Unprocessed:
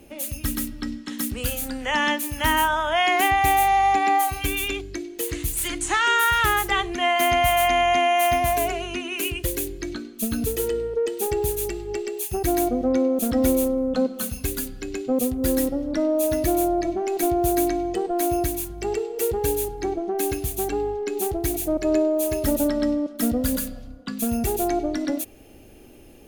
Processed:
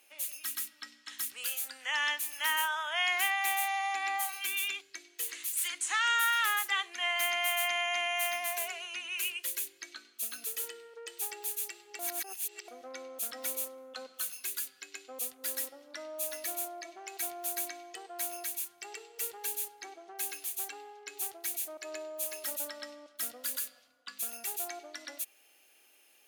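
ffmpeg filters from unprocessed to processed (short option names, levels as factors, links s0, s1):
-filter_complex "[0:a]asplit=3[s0][s1][s2];[s0]atrim=end=11.992[s3];[s1]atrim=start=11.988:end=12.682,asetpts=PTS-STARTPTS,areverse[s4];[s2]atrim=start=12.678[s5];[s3][s4]acrossfade=d=0.004:c1=hsin:c2=hsin[s6];[s6][s5]acrossfade=d=0.004:c1=hsin:c2=hsin,highpass=1400,volume=0.531"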